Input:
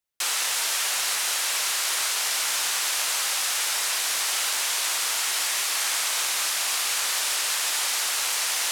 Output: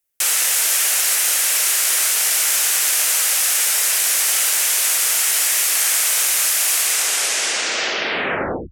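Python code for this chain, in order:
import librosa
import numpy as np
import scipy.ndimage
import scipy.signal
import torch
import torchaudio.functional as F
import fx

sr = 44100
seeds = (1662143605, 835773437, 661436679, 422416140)

y = fx.tape_stop_end(x, sr, length_s=1.99)
y = fx.graphic_eq_10(y, sr, hz=(125, 250, 1000, 4000, 16000), db=(-8, -3, -9, -7, 6))
y = F.gain(torch.from_numpy(y), 8.5).numpy()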